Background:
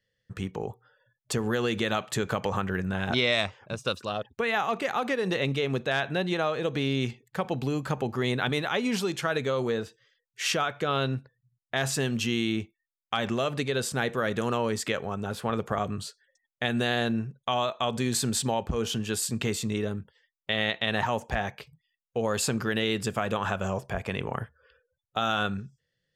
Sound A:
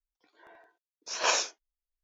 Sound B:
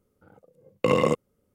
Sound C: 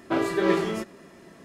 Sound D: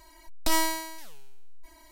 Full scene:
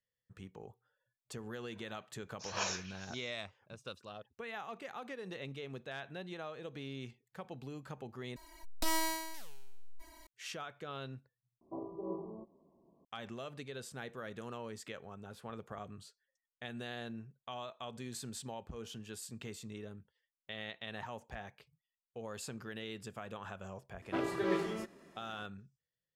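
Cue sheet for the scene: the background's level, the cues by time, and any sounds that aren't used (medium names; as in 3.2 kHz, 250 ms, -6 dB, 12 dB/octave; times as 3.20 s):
background -17 dB
1.33 s: add A -10.5 dB + repeats whose band climbs or falls 137 ms, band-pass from 1.9 kHz, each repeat 0.7 oct, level -10 dB
8.36 s: replace with D -3 dB + peak limiter -21.5 dBFS
11.61 s: replace with C -17.5 dB + Chebyshev low-pass 1.1 kHz, order 8
24.02 s: add C -10.5 dB
not used: B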